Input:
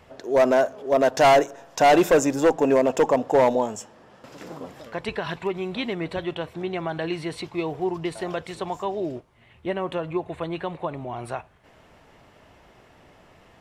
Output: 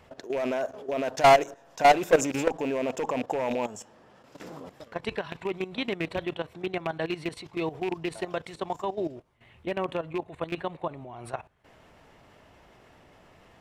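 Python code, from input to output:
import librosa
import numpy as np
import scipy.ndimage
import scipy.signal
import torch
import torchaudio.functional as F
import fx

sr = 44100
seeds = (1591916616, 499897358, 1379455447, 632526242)

y = fx.rattle_buzz(x, sr, strikes_db=-30.0, level_db=-22.0)
y = fx.level_steps(y, sr, step_db=14)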